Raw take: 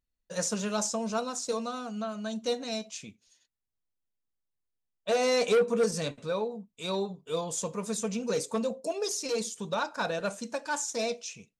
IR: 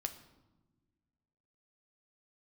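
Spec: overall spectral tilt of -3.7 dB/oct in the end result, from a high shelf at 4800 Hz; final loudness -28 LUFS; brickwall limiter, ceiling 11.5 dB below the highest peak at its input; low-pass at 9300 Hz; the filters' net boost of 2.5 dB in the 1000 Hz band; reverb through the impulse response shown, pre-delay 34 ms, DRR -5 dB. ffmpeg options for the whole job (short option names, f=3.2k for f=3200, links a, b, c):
-filter_complex "[0:a]lowpass=9.3k,equalizer=f=1k:t=o:g=3.5,highshelf=f=4.8k:g=-4,alimiter=level_in=3dB:limit=-24dB:level=0:latency=1,volume=-3dB,asplit=2[a][b];[1:a]atrim=start_sample=2205,adelay=34[c];[b][c]afir=irnorm=-1:irlink=0,volume=6dB[d];[a][d]amix=inputs=2:normalize=0,volume=2dB"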